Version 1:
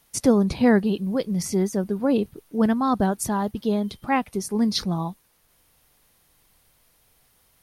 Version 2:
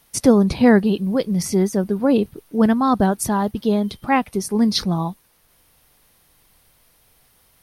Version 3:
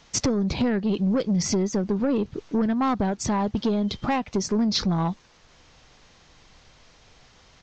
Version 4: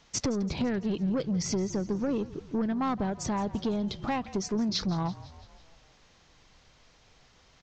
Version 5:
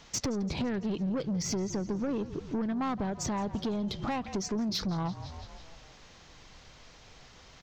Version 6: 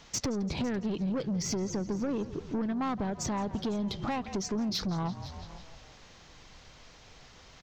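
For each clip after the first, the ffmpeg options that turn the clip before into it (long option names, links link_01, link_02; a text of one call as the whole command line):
ffmpeg -i in.wav -af "equalizer=frequency=7100:width=5.2:gain=-4,volume=4.5dB" out.wav
ffmpeg -i in.wav -af "acompressor=threshold=-23dB:ratio=12,aresample=16000,asoftclip=type=tanh:threshold=-23.5dB,aresample=44100,volume=6.5dB" out.wav
ffmpeg -i in.wav -filter_complex "[0:a]asplit=6[link_01][link_02][link_03][link_04][link_05][link_06];[link_02]adelay=168,afreqshift=-41,volume=-17.5dB[link_07];[link_03]adelay=336,afreqshift=-82,volume=-22.1dB[link_08];[link_04]adelay=504,afreqshift=-123,volume=-26.7dB[link_09];[link_05]adelay=672,afreqshift=-164,volume=-31.2dB[link_10];[link_06]adelay=840,afreqshift=-205,volume=-35.8dB[link_11];[link_01][link_07][link_08][link_09][link_10][link_11]amix=inputs=6:normalize=0,volume=-6dB" out.wav
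ffmpeg -i in.wav -af "acompressor=threshold=-38dB:ratio=2.5,asoftclip=type=tanh:threshold=-31dB,volume=6.5dB" out.wav
ffmpeg -i in.wav -af "aecho=1:1:504:0.1" out.wav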